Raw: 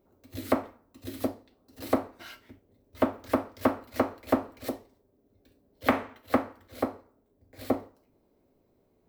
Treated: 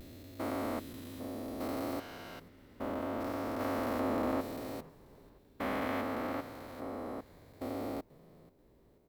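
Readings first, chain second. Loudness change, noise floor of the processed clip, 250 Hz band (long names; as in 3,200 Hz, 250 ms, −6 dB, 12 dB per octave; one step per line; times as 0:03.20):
−6.5 dB, −64 dBFS, −5.5 dB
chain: spectrum averaged block by block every 400 ms
pitch vibrato 0.66 Hz 41 cents
echo with shifted repeats 486 ms, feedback 41%, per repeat −110 Hz, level −21 dB
level +2 dB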